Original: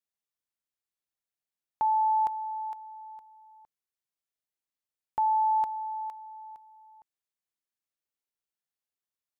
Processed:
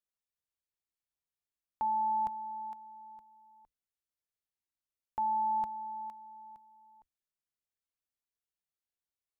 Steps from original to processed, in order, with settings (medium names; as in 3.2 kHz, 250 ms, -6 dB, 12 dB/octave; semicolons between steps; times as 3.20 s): octave divider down 2 oct, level -4 dB; bass shelf 110 Hz +7 dB; trim -6 dB